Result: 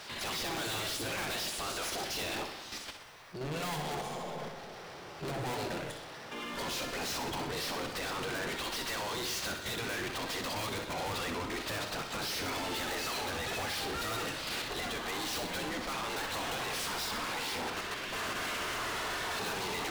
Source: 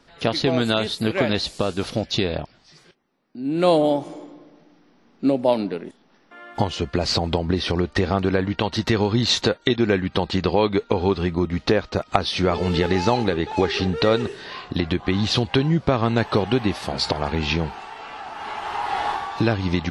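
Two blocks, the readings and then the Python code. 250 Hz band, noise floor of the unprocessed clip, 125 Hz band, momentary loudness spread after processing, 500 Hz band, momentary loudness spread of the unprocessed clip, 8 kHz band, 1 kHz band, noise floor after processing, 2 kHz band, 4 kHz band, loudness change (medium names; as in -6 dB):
-19.5 dB, -57 dBFS, -20.0 dB, 6 LU, -17.5 dB, 10 LU, 0.0 dB, -10.5 dB, -47 dBFS, -6.5 dB, -9.0 dB, -13.0 dB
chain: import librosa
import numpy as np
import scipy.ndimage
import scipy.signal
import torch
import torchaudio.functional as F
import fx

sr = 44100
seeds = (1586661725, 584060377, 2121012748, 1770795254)

p1 = fx.spec_gate(x, sr, threshold_db=-10, keep='weak')
p2 = fx.level_steps(p1, sr, step_db=14)
p3 = fx.power_curve(p2, sr, exponent=0.5)
p4 = np.clip(10.0 ** (29.0 / 20.0) * p3, -1.0, 1.0) / 10.0 ** (29.0 / 20.0)
p5 = p4 + fx.echo_feedback(p4, sr, ms=63, feedback_pct=59, wet_db=-8.0, dry=0)
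y = p5 * librosa.db_to_amplitude(-7.0)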